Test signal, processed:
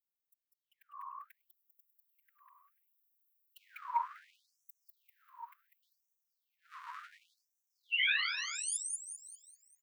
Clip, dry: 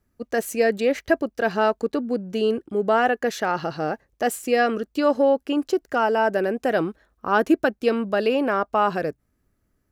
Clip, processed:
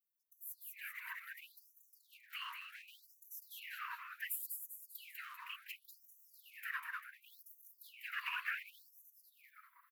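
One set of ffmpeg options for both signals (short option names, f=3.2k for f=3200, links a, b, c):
-filter_complex "[0:a]acompressor=threshold=-30dB:ratio=3,volume=23dB,asoftclip=hard,volume=-23dB,firequalizer=gain_entry='entry(110,0);entry(270,-28);entry(400,13);entry(610,13);entry(1100,-19);entry(2000,-2);entry(3800,-20);entry(5800,-28);entry(14000,4)':delay=0.05:min_phase=1,asplit=7[a][b][c][d][e][f][g];[b]adelay=197,afreqshift=-150,volume=-3.5dB[h];[c]adelay=394,afreqshift=-300,volume=-10.4dB[i];[d]adelay=591,afreqshift=-450,volume=-17.4dB[j];[e]adelay=788,afreqshift=-600,volume=-24.3dB[k];[f]adelay=985,afreqshift=-750,volume=-31.2dB[l];[g]adelay=1182,afreqshift=-900,volume=-38.2dB[m];[a][h][i][j][k][l][m]amix=inputs=7:normalize=0,afftfilt=real='hypot(re,im)*cos(2*PI*random(0))':imag='hypot(re,im)*sin(2*PI*random(1))':win_size=512:overlap=0.75,highpass=f=57:w=0.5412,highpass=f=57:w=1.3066,lowshelf=f=250:g=-5,dynaudnorm=f=260:g=11:m=14dB,afftfilt=real='re*gte(b*sr/1024,930*pow(5800/930,0.5+0.5*sin(2*PI*0.69*pts/sr)))':imag='im*gte(b*sr/1024,930*pow(5800/930,0.5+0.5*sin(2*PI*0.69*pts/sr)))':win_size=1024:overlap=0.75,volume=3dB"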